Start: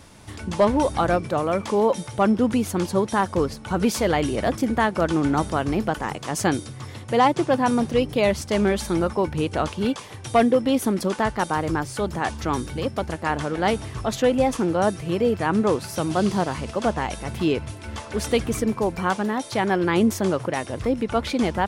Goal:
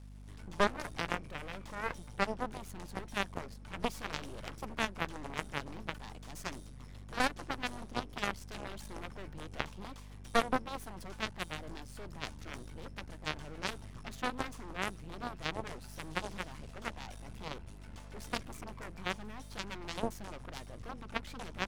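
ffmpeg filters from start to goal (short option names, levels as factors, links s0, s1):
-af "aeval=exprs='max(val(0),0)':c=same,aeval=exprs='0.376*(cos(1*acos(clip(val(0)/0.376,-1,1)))-cos(1*PI/2))+0.168*(cos(3*acos(clip(val(0)/0.376,-1,1)))-cos(3*PI/2))':c=same,aeval=exprs='val(0)+0.00631*(sin(2*PI*50*n/s)+sin(2*PI*2*50*n/s)/2+sin(2*PI*3*50*n/s)/3+sin(2*PI*4*50*n/s)/4+sin(2*PI*5*50*n/s)/5)':c=same,volume=0.562"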